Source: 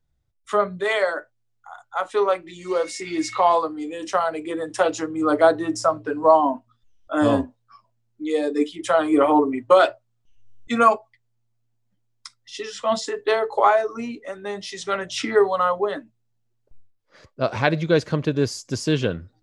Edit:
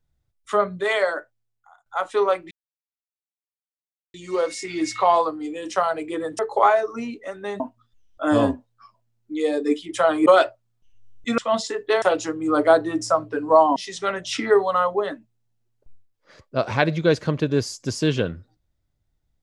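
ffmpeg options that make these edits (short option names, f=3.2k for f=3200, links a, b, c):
-filter_complex "[0:a]asplit=9[a][b][c][d][e][f][g][h][i];[a]atrim=end=1.86,asetpts=PTS-STARTPTS,afade=t=out:st=1.13:d=0.73:silence=0.0794328[j];[b]atrim=start=1.86:end=2.51,asetpts=PTS-STARTPTS,afade=t=in:d=0.004:c=hsin:silence=0.0794328,afade=t=out:st=0.646:d=0.004:c=hsin,apad=pad_dur=1.63[k];[c]atrim=start=2.51:end=4.762,asetpts=PTS-STARTPTS,afade=t=in:d=0.004:c=hsin[l];[d]atrim=start=13.398:end=14.612[m];[e]atrim=start=6.498:end=9.162[n];[f]atrim=start=9.688:end=10.812[o];[g]atrim=start=12.758:end=13.402[p];[h]atrim=start=4.758:end=6.502[q];[i]atrim=start=14.608[r];[j][k][l]concat=n=3:v=0:a=1[s];[s][m]acrossfade=d=0.004:c1=hsin:c2=hsin[t];[t][n]acrossfade=d=0.004:c1=hsin:c2=hsin[u];[u][o]acrossfade=d=0.004:c1=hsin:c2=hsin[v];[v][p]acrossfade=d=0.004:c1=hsin:c2=hsin[w];[w][q]acrossfade=d=0.004:c1=hsin:c2=hsin[x];[x][r]acrossfade=d=0.004:c1=hsin:c2=hsin"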